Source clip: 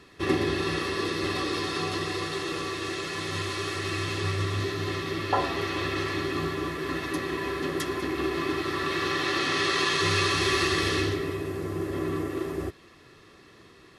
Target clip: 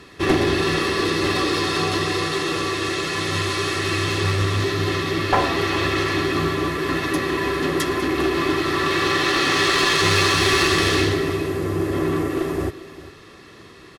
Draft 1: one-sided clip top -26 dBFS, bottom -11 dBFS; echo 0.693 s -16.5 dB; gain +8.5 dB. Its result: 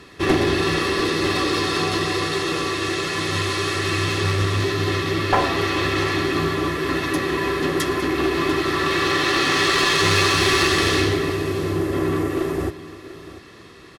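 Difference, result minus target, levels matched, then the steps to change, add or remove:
echo 0.292 s late
change: echo 0.401 s -16.5 dB

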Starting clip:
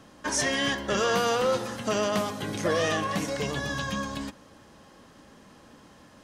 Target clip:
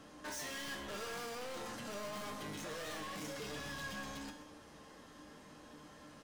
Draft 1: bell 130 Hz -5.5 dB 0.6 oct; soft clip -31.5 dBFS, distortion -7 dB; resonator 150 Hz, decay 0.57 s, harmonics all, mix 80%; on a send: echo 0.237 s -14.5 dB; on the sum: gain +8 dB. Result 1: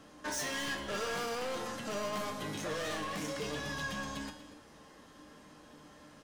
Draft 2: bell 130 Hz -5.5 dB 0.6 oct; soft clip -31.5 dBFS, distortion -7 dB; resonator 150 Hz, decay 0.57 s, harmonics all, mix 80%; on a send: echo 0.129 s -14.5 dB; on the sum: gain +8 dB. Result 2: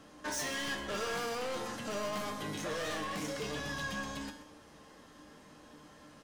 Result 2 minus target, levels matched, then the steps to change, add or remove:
soft clip: distortion -4 dB
change: soft clip -40 dBFS, distortion -3 dB

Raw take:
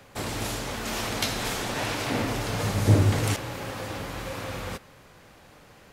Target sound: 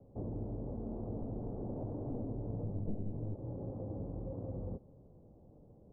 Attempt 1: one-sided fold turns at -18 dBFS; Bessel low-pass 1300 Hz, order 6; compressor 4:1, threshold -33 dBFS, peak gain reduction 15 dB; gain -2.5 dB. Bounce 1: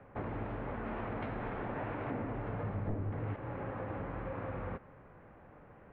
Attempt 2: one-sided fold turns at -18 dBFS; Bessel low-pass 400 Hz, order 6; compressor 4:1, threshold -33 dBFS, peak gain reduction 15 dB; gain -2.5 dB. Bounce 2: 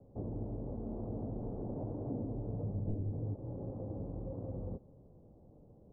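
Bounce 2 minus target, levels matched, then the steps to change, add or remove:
one-sided fold: distortion -8 dB
change: one-sided fold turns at -26 dBFS

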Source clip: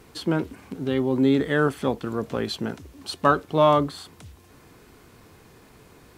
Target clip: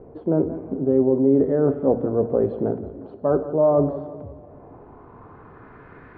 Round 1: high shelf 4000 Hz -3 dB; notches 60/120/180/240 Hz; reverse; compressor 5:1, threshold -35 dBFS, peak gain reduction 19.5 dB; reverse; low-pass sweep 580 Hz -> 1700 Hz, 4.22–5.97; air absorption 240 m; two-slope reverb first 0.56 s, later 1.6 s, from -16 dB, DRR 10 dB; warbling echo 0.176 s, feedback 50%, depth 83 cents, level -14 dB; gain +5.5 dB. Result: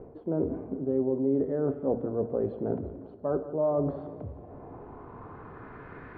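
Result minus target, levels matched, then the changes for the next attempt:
compressor: peak gain reduction +9 dB
change: compressor 5:1, threshold -23.5 dBFS, peak gain reduction 10.5 dB

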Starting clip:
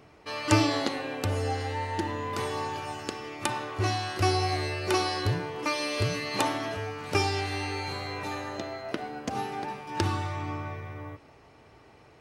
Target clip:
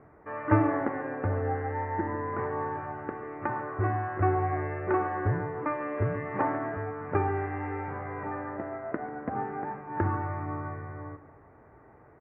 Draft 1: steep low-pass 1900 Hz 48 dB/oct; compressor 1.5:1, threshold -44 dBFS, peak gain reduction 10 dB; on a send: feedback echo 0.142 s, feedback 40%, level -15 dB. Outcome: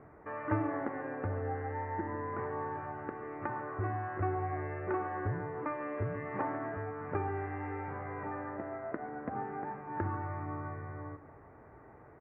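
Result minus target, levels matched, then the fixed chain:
compressor: peak gain reduction +10 dB
steep low-pass 1900 Hz 48 dB/oct; on a send: feedback echo 0.142 s, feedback 40%, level -15 dB

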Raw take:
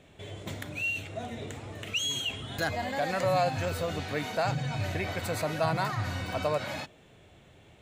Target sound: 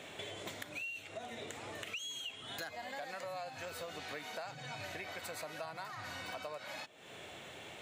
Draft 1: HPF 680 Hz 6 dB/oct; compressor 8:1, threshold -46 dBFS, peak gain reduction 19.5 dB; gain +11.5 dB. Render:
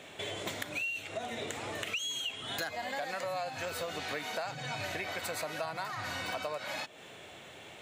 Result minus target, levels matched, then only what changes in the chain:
compressor: peak gain reduction -7 dB
change: compressor 8:1, threshold -54 dBFS, peak gain reduction 26.5 dB

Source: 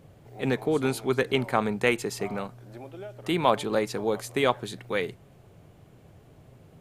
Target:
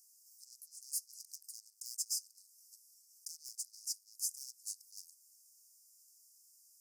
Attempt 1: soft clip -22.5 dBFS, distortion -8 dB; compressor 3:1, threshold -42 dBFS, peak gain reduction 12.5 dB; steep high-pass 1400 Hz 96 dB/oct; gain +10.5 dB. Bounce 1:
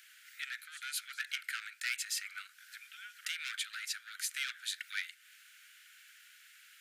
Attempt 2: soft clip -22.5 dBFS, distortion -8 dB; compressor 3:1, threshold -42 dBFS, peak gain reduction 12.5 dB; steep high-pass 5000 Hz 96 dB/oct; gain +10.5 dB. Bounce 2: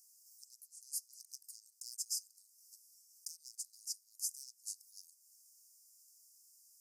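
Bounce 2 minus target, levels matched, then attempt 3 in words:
soft clip: distortion -5 dB
soft clip -32 dBFS, distortion -3 dB; compressor 3:1, threshold -42 dBFS, peak gain reduction 6.5 dB; steep high-pass 5000 Hz 96 dB/oct; gain +10.5 dB

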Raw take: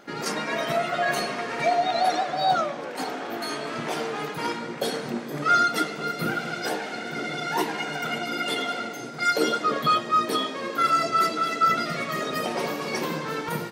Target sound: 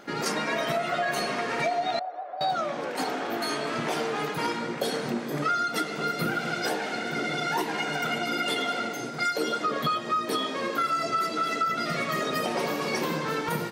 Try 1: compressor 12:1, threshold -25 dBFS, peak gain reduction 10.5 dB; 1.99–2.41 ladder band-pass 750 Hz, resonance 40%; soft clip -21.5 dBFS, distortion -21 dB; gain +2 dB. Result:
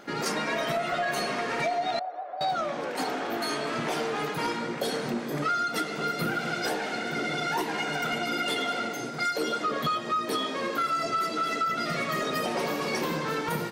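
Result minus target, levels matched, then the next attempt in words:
soft clip: distortion +13 dB
compressor 12:1, threshold -25 dBFS, peak gain reduction 10.5 dB; 1.99–2.41 ladder band-pass 750 Hz, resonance 40%; soft clip -14 dBFS, distortion -34 dB; gain +2 dB

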